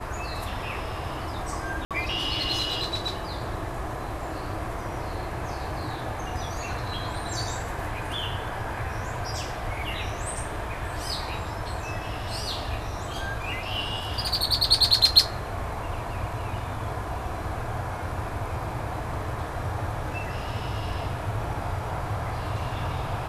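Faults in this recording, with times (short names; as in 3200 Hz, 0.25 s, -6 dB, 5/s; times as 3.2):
1.85–1.91 gap 57 ms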